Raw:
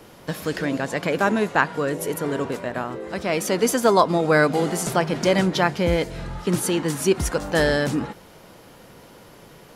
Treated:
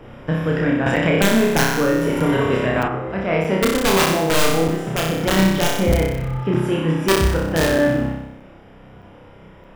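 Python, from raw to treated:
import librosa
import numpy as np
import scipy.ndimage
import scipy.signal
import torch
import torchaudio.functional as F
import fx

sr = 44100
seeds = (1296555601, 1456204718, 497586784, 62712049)

y = scipy.signal.savgol_filter(x, 25, 4, mode='constant')
y = (np.mod(10.0 ** (10.0 / 20.0) * y + 1.0, 2.0) - 1.0) / 10.0 ** (10.0 / 20.0)
y = fx.low_shelf(y, sr, hz=85.0, db=11.0)
y = fx.room_flutter(y, sr, wall_m=5.3, rt60_s=0.9)
y = fx.rider(y, sr, range_db=5, speed_s=2.0)
y = fx.peak_eq(y, sr, hz=160.0, db=2.0, octaves=2.7)
y = fx.buffer_crackle(y, sr, first_s=0.96, period_s=0.62, block=256, kind='zero')
y = fx.band_squash(y, sr, depth_pct=70, at=(0.86, 2.88))
y = y * librosa.db_to_amplitude(-2.5)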